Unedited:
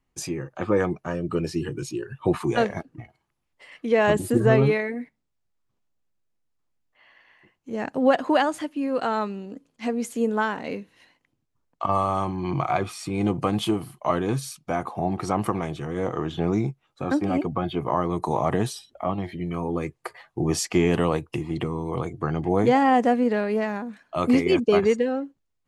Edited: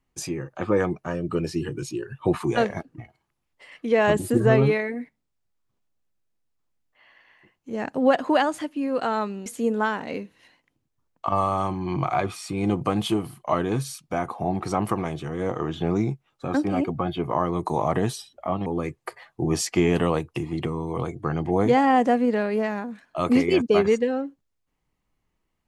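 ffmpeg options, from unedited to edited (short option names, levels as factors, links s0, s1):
-filter_complex "[0:a]asplit=3[s0][s1][s2];[s0]atrim=end=9.462[s3];[s1]atrim=start=10.028:end=19.232[s4];[s2]atrim=start=19.638[s5];[s3][s4]acrossfade=d=0.004:c1=hsin:c2=hsin[s6];[s6][s5]acrossfade=d=0.004:c1=hsin:c2=hsin"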